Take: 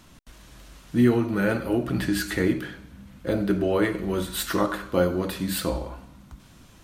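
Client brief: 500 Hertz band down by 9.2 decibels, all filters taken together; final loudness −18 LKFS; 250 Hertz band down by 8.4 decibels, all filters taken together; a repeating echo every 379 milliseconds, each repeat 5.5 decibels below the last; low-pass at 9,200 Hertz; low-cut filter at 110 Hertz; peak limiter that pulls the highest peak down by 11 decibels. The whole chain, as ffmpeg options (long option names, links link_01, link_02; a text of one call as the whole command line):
ffmpeg -i in.wav -af "highpass=110,lowpass=9200,equalizer=frequency=250:width_type=o:gain=-8,equalizer=frequency=500:width_type=o:gain=-9,alimiter=level_in=1dB:limit=-24dB:level=0:latency=1,volume=-1dB,aecho=1:1:379|758|1137|1516|1895|2274|2653:0.531|0.281|0.149|0.079|0.0419|0.0222|0.0118,volume=16dB" out.wav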